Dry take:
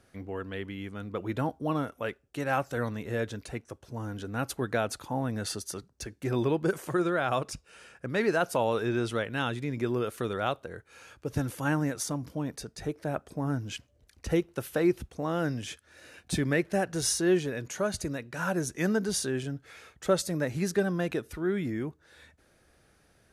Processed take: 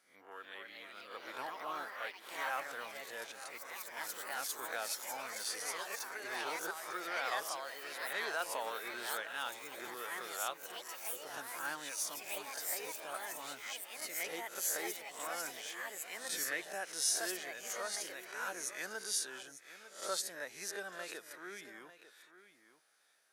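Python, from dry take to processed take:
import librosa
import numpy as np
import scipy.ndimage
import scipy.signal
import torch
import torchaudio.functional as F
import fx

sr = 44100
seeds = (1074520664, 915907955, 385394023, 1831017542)

y = fx.spec_swells(x, sr, rise_s=0.43)
y = scipy.signal.sosfilt(scipy.signal.butter(2, 1400.0, 'highpass', fs=sr, output='sos'), y)
y = fx.peak_eq(y, sr, hz=2000.0, db=-8.0, octaves=2.0)
y = y + 10.0 ** (-14.0 / 20.0) * np.pad(y, (int(898 * sr / 1000.0), 0))[:len(y)]
y = fx.echo_pitch(y, sr, ms=314, semitones=3, count=3, db_per_echo=-3.0)
y = fx.peak_eq(y, sr, hz=9100.0, db=-6.0, octaves=2.6)
y = fx.notch(y, sr, hz=2700.0, q=30.0)
y = F.gain(torch.from_numpy(y), 1.5).numpy()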